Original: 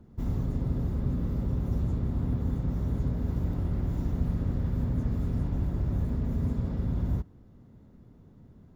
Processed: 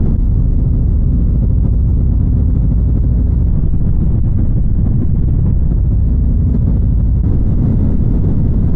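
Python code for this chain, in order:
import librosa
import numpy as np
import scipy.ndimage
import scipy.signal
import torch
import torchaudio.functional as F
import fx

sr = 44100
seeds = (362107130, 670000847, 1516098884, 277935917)

y = fx.tilt_eq(x, sr, slope=-3.5)
y = fx.lpc_vocoder(y, sr, seeds[0], excitation='whisper', order=8, at=(3.5, 5.7))
y = fx.env_flatten(y, sr, amount_pct=100)
y = y * librosa.db_to_amplitude(-2.0)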